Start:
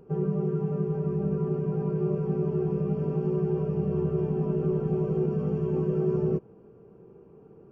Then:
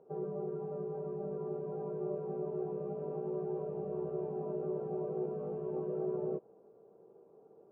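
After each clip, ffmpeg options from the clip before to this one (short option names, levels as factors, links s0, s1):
-af "bandpass=f=640:t=q:w=2.3:csg=0"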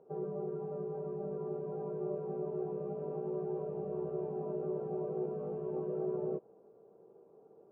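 -af anull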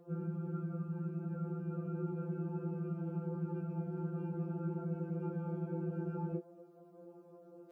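-af "afftfilt=real='re*2.83*eq(mod(b,8),0)':imag='im*2.83*eq(mod(b,8),0)':win_size=2048:overlap=0.75,volume=2.66"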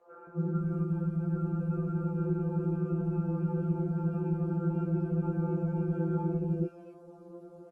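-filter_complex "[0:a]acrossover=split=600|2200[s0][s1][s2];[s0]adelay=270[s3];[s2]adelay=560[s4];[s3][s1][s4]amix=inputs=3:normalize=0,volume=2.66" -ar 48000 -c:a libopus -b:a 24k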